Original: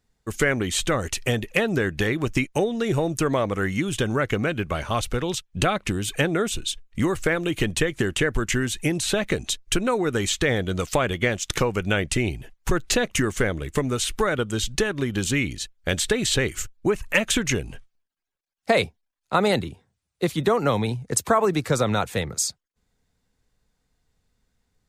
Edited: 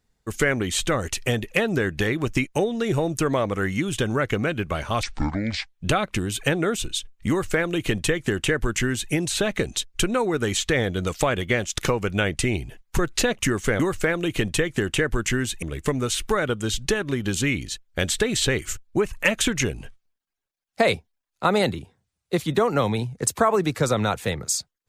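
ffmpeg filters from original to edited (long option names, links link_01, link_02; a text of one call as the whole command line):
ffmpeg -i in.wav -filter_complex "[0:a]asplit=5[link_01][link_02][link_03][link_04][link_05];[link_01]atrim=end=5.034[link_06];[link_02]atrim=start=5.03:end=5.46,asetpts=PTS-STARTPTS,asetrate=26901,aresample=44100[link_07];[link_03]atrim=start=5.456:end=13.522[link_08];[link_04]atrim=start=7.018:end=8.852[link_09];[link_05]atrim=start=13.518[link_10];[link_06][link_07]acrossfade=duration=0.004:curve1=hsin:curve2=hsin[link_11];[link_11][link_08]acrossfade=duration=0.004:curve1=hsin:curve2=hsin[link_12];[link_12][link_09]acrossfade=duration=0.004:curve1=hsin:curve2=hsin[link_13];[link_13][link_10]acrossfade=duration=0.004:curve1=hsin:curve2=hsin" out.wav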